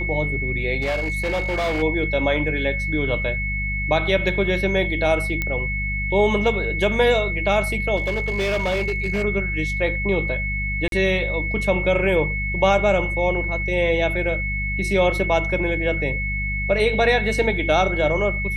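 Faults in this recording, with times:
mains hum 50 Hz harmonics 4 −27 dBFS
whistle 2,200 Hz −25 dBFS
0:00.81–0:01.83: clipping −19 dBFS
0:05.42: click −10 dBFS
0:07.96–0:09.24: clipping −18 dBFS
0:10.88–0:10.92: drop-out 42 ms

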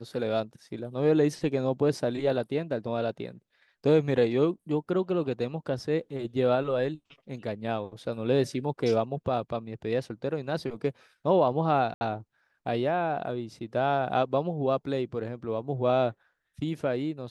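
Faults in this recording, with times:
0:11.94–0:12.01: drop-out 70 ms

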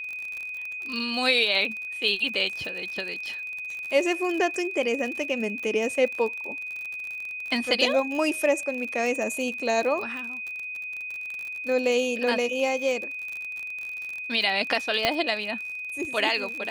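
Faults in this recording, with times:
surface crackle 48 per second −31 dBFS
whistle 2,500 Hz −32 dBFS
0:15.05: click −7 dBFS

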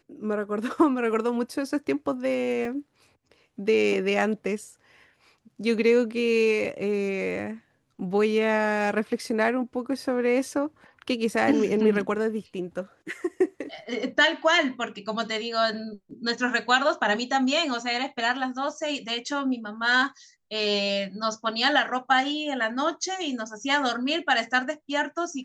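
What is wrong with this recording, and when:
0:02.65: drop-out 2.1 ms

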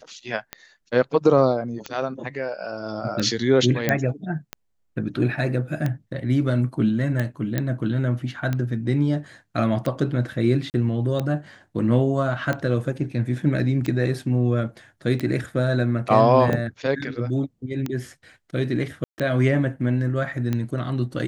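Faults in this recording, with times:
scratch tick 45 rpm −13 dBFS
0:03.89: click −6 dBFS
0:07.58: click −10 dBFS
0:10.70–0:10.74: drop-out 39 ms
0:19.04–0:19.18: drop-out 139 ms

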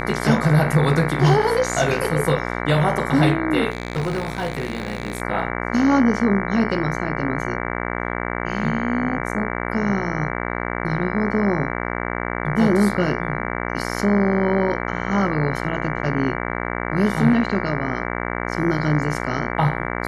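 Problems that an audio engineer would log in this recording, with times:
mains buzz 60 Hz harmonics 38 −26 dBFS
0:03.70–0:05.22: clipping −19 dBFS

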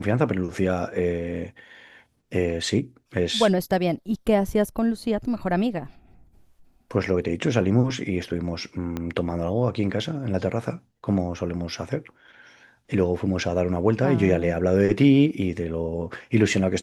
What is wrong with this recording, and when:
0:08.97: click −16 dBFS

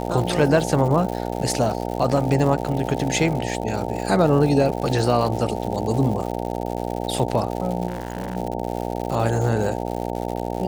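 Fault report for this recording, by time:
mains buzz 60 Hz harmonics 15 −27 dBFS
surface crackle 200 per second −28 dBFS
0:07.88–0:08.37: clipping −22 dBFS

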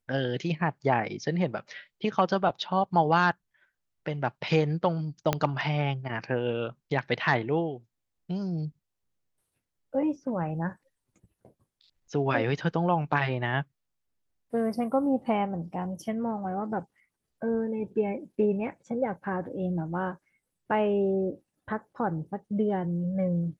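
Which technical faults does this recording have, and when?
0:05.33: click −10 dBFS

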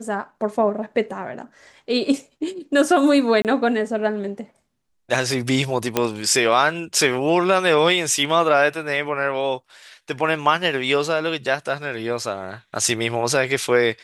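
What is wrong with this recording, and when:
0:03.42–0:03.45: drop-out 28 ms
0:05.97: click −3 dBFS

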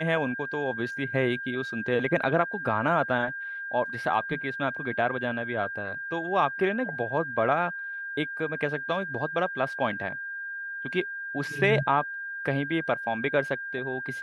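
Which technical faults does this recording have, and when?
whistle 1,600 Hz −33 dBFS

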